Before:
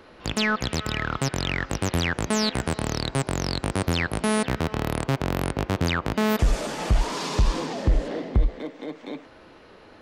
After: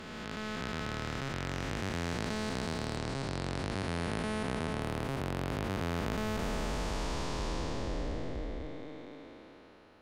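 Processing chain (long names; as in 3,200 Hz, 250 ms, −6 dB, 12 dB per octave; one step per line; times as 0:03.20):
spectrum smeared in time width 805 ms
0:02.96–0:04.81: low-pass filter 9,500 Hz 12 dB per octave
level −6 dB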